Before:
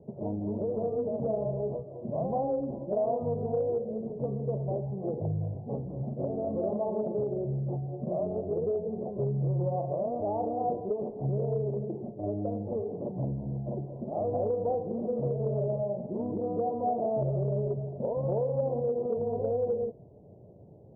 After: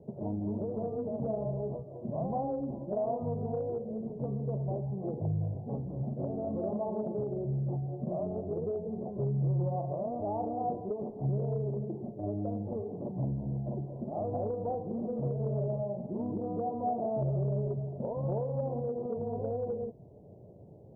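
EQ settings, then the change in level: dynamic bell 500 Hz, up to -6 dB, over -44 dBFS, Q 1.6; 0.0 dB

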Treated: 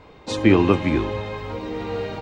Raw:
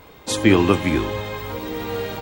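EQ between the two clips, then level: distance through air 130 m; peaking EQ 1.6 kHz -3 dB 0.77 oct; band-stop 3.3 kHz, Q 15; 0.0 dB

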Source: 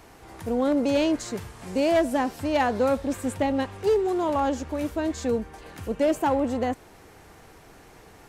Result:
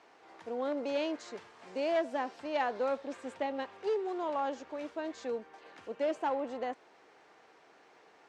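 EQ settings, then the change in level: band-pass 410–6000 Hz; distance through air 58 m; -7.5 dB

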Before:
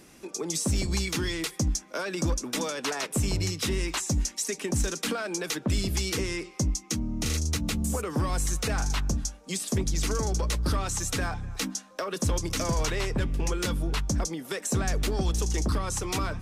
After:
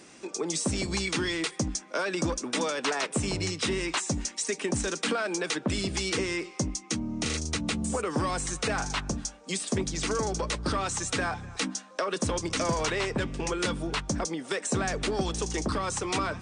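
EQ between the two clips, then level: high-pass 250 Hz 6 dB/octave; brick-wall FIR low-pass 9.6 kHz; dynamic bell 6.5 kHz, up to -5 dB, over -44 dBFS, Q 0.92; +3.5 dB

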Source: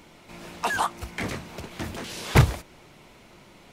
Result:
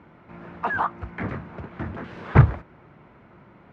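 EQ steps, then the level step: high-pass 79 Hz; resonant low-pass 1.5 kHz, resonance Q 1.8; bass shelf 230 Hz +10 dB; -3.0 dB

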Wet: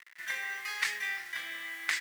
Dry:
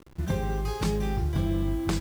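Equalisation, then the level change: resonant high-pass 1.9 kHz, resonance Q 8.3; 0.0 dB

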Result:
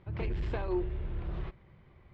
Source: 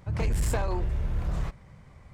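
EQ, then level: four-pole ladder low-pass 4.2 kHz, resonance 35%; distance through air 100 m; peaking EQ 360 Hz +13 dB 0.28 oct; 0.0 dB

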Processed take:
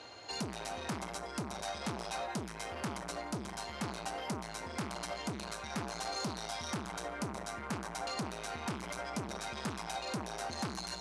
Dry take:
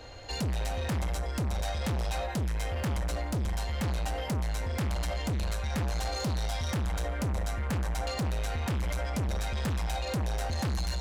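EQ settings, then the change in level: dynamic bell 3.1 kHz, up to -6 dB, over -56 dBFS, Q 1.2; cabinet simulation 260–9800 Hz, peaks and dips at 280 Hz -4 dB, 520 Hz -10 dB, 760 Hz -3 dB, 1.8 kHz -5 dB, 7.4 kHz -5 dB; +1.5 dB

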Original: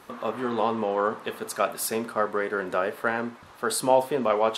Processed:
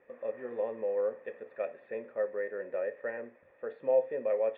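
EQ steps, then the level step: cascade formant filter e; 0.0 dB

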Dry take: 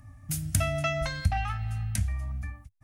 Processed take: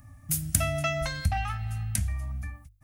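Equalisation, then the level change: treble shelf 9.9 kHz +11 dB; hum notches 50/100 Hz; 0.0 dB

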